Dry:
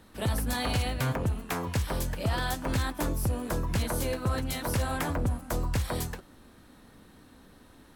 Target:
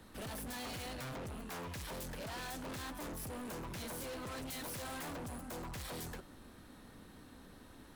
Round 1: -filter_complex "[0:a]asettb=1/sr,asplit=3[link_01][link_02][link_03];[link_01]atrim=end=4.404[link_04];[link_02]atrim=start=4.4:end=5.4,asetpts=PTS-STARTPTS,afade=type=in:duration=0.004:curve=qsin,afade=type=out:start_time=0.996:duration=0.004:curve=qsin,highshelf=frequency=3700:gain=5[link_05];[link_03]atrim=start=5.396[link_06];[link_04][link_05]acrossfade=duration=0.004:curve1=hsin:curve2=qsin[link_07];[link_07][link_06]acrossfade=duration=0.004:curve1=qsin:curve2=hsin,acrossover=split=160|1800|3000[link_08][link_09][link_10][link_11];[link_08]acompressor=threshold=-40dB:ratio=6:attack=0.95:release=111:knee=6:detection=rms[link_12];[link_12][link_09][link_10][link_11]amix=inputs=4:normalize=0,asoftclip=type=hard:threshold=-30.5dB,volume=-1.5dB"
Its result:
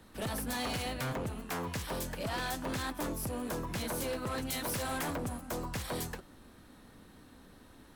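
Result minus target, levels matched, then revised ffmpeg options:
hard clipping: distortion −7 dB
-filter_complex "[0:a]asettb=1/sr,asplit=3[link_01][link_02][link_03];[link_01]atrim=end=4.404[link_04];[link_02]atrim=start=4.4:end=5.4,asetpts=PTS-STARTPTS,afade=type=in:duration=0.004:curve=qsin,afade=type=out:start_time=0.996:duration=0.004:curve=qsin,highshelf=frequency=3700:gain=5[link_05];[link_03]atrim=start=5.396[link_06];[link_04][link_05]acrossfade=duration=0.004:curve1=hsin:curve2=qsin[link_07];[link_07][link_06]acrossfade=duration=0.004:curve1=qsin:curve2=hsin,acrossover=split=160|1800|3000[link_08][link_09][link_10][link_11];[link_08]acompressor=threshold=-40dB:ratio=6:attack=0.95:release=111:knee=6:detection=rms[link_12];[link_12][link_09][link_10][link_11]amix=inputs=4:normalize=0,asoftclip=type=hard:threshold=-41dB,volume=-1.5dB"

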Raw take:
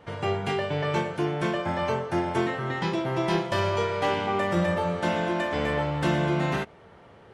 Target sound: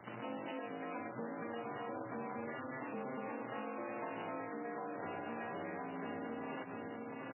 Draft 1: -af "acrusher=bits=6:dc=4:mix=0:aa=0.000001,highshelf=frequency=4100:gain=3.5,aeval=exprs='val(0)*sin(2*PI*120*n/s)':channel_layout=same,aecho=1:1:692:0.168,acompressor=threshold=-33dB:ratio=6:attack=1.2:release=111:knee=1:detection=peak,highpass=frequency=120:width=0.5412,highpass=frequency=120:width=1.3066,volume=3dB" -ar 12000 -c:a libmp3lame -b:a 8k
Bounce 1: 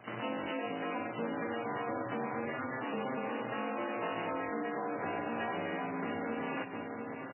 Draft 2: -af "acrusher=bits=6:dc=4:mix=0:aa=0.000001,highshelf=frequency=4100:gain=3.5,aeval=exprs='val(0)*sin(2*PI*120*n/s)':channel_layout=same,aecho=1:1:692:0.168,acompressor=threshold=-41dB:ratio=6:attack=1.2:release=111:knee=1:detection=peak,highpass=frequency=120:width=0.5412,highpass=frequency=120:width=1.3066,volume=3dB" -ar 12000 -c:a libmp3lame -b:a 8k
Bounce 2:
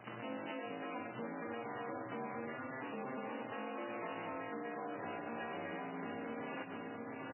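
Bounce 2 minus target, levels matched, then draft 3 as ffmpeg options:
4,000 Hz band +3.5 dB
-af "acrusher=bits=6:dc=4:mix=0:aa=0.000001,highshelf=frequency=4100:gain=-8,aeval=exprs='val(0)*sin(2*PI*120*n/s)':channel_layout=same,aecho=1:1:692:0.168,acompressor=threshold=-41dB:ratio=6:attack=1.2:release=111:knee=1:detection=peak,highpass=frequency=120:width=0.5412,highpass=frequency=120:width=1.3066,volume=3dB" -ar 12000 -c:a libmp3lame -b:a 8k

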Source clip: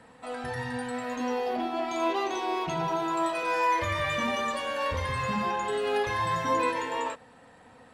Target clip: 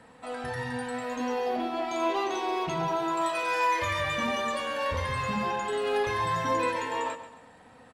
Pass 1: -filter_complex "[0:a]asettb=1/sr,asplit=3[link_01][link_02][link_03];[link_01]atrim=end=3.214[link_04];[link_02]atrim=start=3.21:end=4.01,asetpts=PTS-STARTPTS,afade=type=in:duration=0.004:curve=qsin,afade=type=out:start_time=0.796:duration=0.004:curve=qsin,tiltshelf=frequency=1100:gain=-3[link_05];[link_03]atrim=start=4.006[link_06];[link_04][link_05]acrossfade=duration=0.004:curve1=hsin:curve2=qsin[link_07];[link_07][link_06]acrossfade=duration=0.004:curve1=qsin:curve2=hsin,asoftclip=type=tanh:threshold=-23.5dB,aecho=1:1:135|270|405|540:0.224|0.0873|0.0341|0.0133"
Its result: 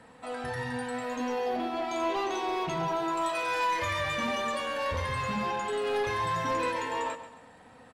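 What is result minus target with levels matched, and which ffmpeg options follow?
soft clipping: distortion +14 dB
-filter_complex "[0:a]asettb=1/sr,asplit=3[link_01][link_02][link_03];[link_01]atrim=end=3.214[link_04];[link_02]atrim=start=3.21:end=4.01,asetpts=PTS-STARTPTS,afade=type=in:duration=0.004:curve=qsin,afade=type=out:start_time=0.796:duration=0.004:curve=qsin,tiltshelf=frequency=1100:gain=-3[link_05];[link_03]atrim=start=4.006[link_06];[link_04][link_05]acrossfade=duration=0.004:curve1=hsin:curve2=qsin[link_07];[link_07][link_06]acrossfade=duration=0.004:curve1=qsin:curve2=hsin,asoftclip=type=tanh:threshold=-14.5dB,aecho=1:1:135|270|405|540:0.224|0.0873|0.0341|0.0133"

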